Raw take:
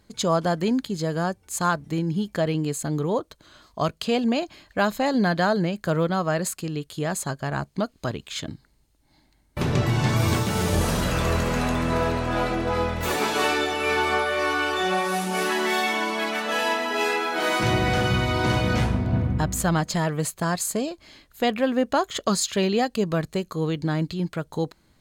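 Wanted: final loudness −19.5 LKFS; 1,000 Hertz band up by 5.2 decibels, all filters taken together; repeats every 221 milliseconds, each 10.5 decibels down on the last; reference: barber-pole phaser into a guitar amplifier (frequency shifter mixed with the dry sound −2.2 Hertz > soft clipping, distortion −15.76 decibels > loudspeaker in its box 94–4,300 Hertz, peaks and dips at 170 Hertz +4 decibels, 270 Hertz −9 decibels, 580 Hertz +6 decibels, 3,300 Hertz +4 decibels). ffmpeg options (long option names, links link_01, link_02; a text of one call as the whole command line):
ffmpeg -i in.wav -filter_complex "[0:a]equalizer=frequency=1000:width_type=o:gain=6,aecho=1:1:221|442|663:0.299|0.0896|0.0269,asplit=2[link_01][link_02];[link_02]afreqshift=-2.2[link_03];[link_01][link_03]amix=inputs=2:normalize=1,asoftclip=threshold=-18dB,highpass=94,equalizer=frequency=170:width_type=q:width=4:gain=4,equalizer=frequency=270:width_type=q:width=4:gain=-9,equalizer=frequency=580:width_type=q:width=4:gain=6,equalizer=frequency=3300:width_type=q:width=4:gain=4,lowpass=frequency=4300:width=0.5412,lowpass=frequency=4300:width=1.3066,volume=7dB" out.wav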